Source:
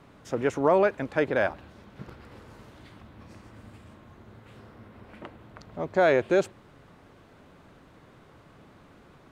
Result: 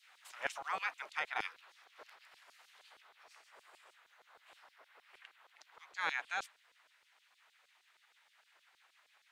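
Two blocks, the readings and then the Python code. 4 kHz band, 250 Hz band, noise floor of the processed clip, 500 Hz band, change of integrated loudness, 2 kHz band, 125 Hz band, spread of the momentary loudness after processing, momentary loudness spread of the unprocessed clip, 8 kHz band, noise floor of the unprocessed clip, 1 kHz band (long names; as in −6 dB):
−3.0 dB, −33.0 dB, −73 dBFS, −29.0 dB, −14.5 dB, −7.0 dB, below −30 dB, 22 LU, 14 LU, can't be measured, −55 dBFS, −11.0 dB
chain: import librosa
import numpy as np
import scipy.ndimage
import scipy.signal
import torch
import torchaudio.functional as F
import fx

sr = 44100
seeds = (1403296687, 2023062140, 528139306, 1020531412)

y = fx.spec_gate(x, sr, threshold_db=-15, keep='weak')
y = fx.rider(y, sr, range_db=4, speed_s=2.0)
y = fx.filter_lfo_highpass(y, sr, shape='saw_down', hz=6.4, low_hz=380.0, high_hz=4900.0, q=1.2)
y = F.gain(torch.from_numpy(y), -2.5).numpy()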